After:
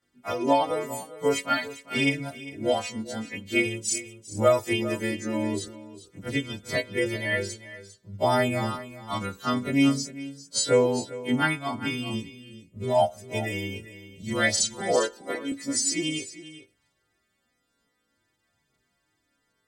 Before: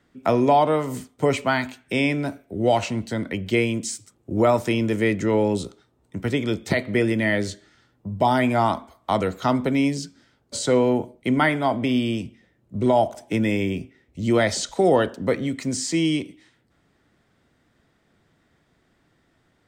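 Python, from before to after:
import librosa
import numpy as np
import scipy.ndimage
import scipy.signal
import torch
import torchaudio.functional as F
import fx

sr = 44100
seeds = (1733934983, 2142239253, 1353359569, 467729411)

y = fx.freq_snap(x, sr, grid_st=2)
y = fx.chorus_voices(y, sr, voices=2, hz=0.24, base_ms=20, depth_ms=2.4, mix_pct=65)
y = fx.highpass(y, sr, hz=190.0, slope=24, at=(14.81, 15.52))
y = y + 10.0 ** (-11.0 / 20.0) * np.pad(y, (int(401 * sr / 1000.0), 0))[:len(y)]
y = fx.upward_expand(y, sr, threshold_db=-32.0, expansion=1.5)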